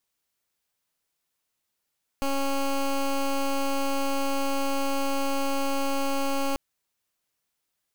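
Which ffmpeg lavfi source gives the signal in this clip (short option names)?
-f lavfi -i "aevalsrc='0.0531*(2*lt(mod(275*t,1),0.15)-1)':d=4.34:s=44100"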